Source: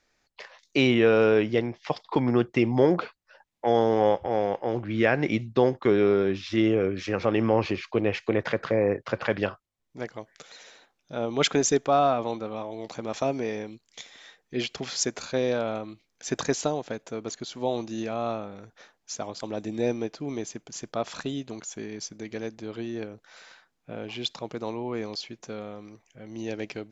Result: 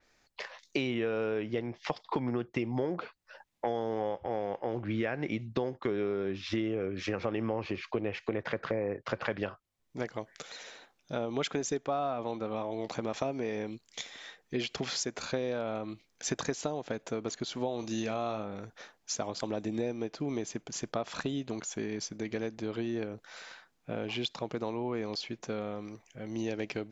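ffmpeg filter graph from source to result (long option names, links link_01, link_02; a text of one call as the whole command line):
ffmpeg -i in.wav -filter_complex "[0:a]asettb=1/sr,asplit=3[link_01][link_02][link_03];[link_01]atrim=end=17.794[link_04];[link_02]atrim=start=17.79:end=18.43,asetpts=PTS-STARTPTS,afade=type=in:duration=0.004:curve=qsin,afade=type=out:start_time=0.636:duration=0.004:curve=qsin,highshelf=frequency=3800:gain=10.5,asplit=2[link_05][link_06];[link_06]adelay=37,volume=-12.5dB[link_07];[link_05][link_07]amix=inputs=2:normalize=0,atrim=end_sample=28224[link_08];[link_03]atrim=start=18.426[link_09];[link_04][link_08]acrossfade=duration=0.004:curve1=hsin:curve2=qsin[link_10];[link_10][link_09]acrossfade=duration=0.004:curve1=qsin:curve2=hsin,acompressor=threshold=-32dB:ratio=6,adynamicequalizer=threshold=0.00178:dfrequency=4100:dqfactor=0.7:tfrequency=4100:tqfactor=0.7:attack=5:release=100:ratio=0.375:range=2.5:mode=cutabove:tftype=highshelf,volume=2.5dB" out.wav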